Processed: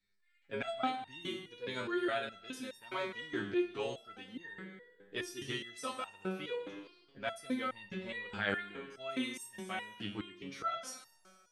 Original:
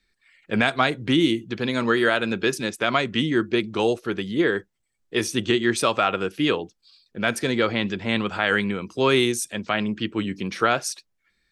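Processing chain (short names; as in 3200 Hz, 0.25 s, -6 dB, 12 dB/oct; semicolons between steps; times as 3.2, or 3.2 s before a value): Schroeder reverb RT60 1.4 s, combs from 32 ms, DRR 8.5 dB; stepped resonator 4.8 Hz 100–910 Hz; gain -3 dB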